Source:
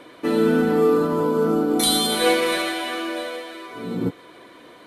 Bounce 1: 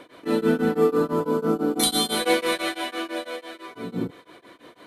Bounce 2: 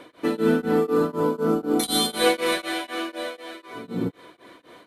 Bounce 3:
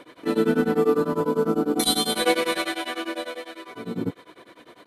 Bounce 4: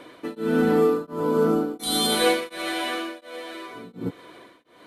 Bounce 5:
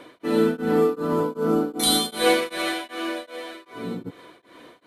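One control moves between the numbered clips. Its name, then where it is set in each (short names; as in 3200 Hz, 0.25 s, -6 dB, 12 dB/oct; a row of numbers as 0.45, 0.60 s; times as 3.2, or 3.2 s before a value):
beating tremolo, nulls at: 6, 4, 10, 1.4, 2.6 Hz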